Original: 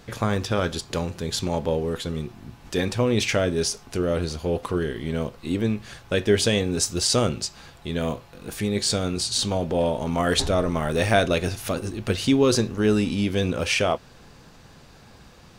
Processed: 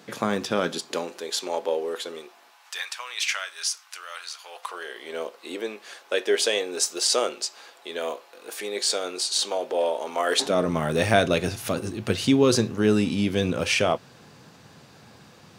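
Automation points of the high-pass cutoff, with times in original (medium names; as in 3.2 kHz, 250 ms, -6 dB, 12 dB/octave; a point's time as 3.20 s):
high-pass 24 dB/octave
0.61 s 170 Hz
1.26 s 370 Hz
2.14 s 370 Hz
2.84 s 1.1 kHz
4.37 s 1.1 kHz
5.17 s 390 Hz
10.29 s 390 Hz
10.71 s 100 Hz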